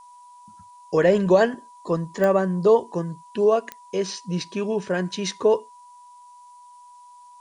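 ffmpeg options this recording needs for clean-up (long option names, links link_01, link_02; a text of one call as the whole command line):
ffmpeg -i in.wav -af "adeclick=threshold=4,bandreject=frequency=980:width=30,agate=range=-21dB:threshold=-40dB" out.wav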